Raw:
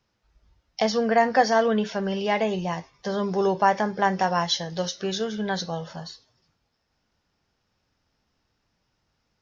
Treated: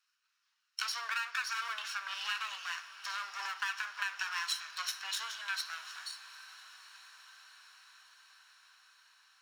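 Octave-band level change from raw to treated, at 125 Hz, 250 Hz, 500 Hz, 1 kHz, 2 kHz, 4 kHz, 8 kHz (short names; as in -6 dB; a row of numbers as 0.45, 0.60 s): under -40 dB, under -40 dB, under -40 dB, -16.5 dB, -5.0 dB, -5.5 dB, n/a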